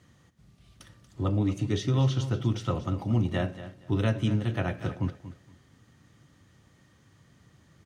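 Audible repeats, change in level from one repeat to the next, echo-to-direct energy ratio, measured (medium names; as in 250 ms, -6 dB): 2, -13.0 dB, -13.5 dB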